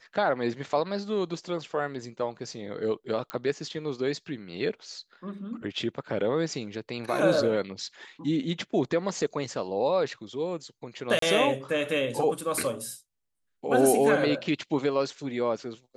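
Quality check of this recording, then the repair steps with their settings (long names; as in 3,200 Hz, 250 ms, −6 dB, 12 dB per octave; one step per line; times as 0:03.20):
0:03.30: click −17 dBFS
0:11.19–0:11.22: drop-out 33 ms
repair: click removal
repair the gap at 0:11.19, 33 ms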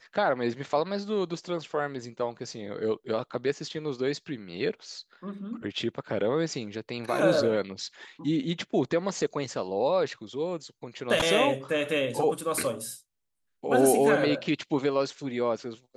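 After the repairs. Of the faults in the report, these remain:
none of them is left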